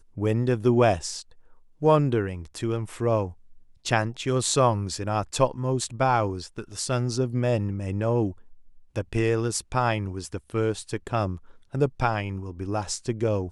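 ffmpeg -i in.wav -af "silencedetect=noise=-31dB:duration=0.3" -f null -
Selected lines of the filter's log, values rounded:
silence_start: 1.20
silence_end: 1.82 | silence_duration: 0.62
silence_start: 3.29
silence_end: 3.86 | silence_duration: 0.57
silence_start: 8.31
silence_end: 8.96 | silence_duration: 0.65
silence_start: 11.36
silence_end: 11.75 | silence_duration: 0.39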